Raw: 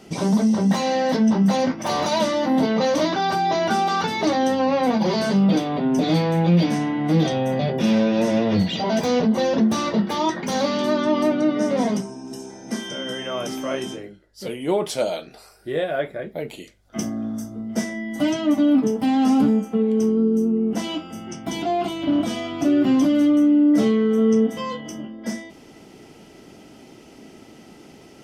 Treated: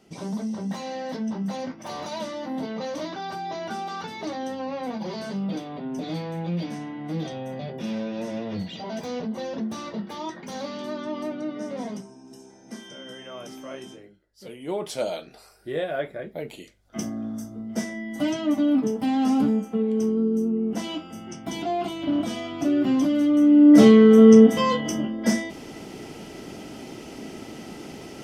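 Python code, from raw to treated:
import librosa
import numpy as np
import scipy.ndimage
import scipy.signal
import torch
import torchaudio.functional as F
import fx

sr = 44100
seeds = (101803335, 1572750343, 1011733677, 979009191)

y = fx.gain(x, sr, db=fx.line((14.44, -11.5), (15.07, -4.0), (23.27, -4.0), (23.82, 6.5)))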